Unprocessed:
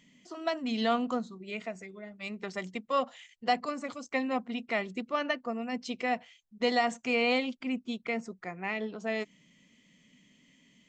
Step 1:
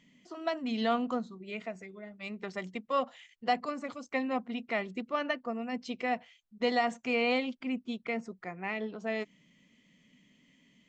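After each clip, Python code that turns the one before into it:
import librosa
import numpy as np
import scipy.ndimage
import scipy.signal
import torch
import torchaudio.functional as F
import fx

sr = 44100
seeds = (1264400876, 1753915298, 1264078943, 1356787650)

y = fx.high_shelf(x, sr, hz=6600.0, db=-10.5)
y = y * librosa.db_to_amplitude(-1.0)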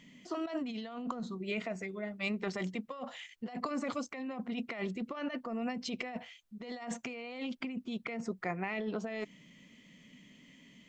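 y = fx.over_compress(x, sr, threshold_db=-39.0, ratio=-1.0)
y = y * librosa.db_to_amplitude(1.0)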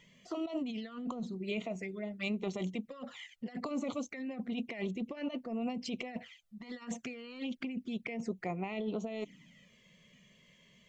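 y = fx.env_flanger(x, sr, rest_ms=2.2, full_db=-34.5)
y = y * librosa.db_to_amplitude(1.0)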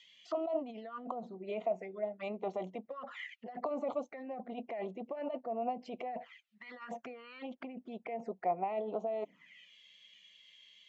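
y = fx.auto_wah(x, sr, base_hz=720.0, top_hz=4000.0, q=2.8, full_db=-38.0, direction='down')
y = y * librosa.db_to_amplitude(9.5)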